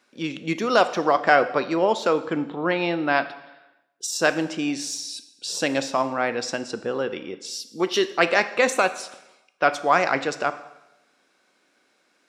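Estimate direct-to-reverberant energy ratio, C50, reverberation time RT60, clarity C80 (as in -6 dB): 11.0 dB, 14.0 dB, 0.95 s, 16.0 dB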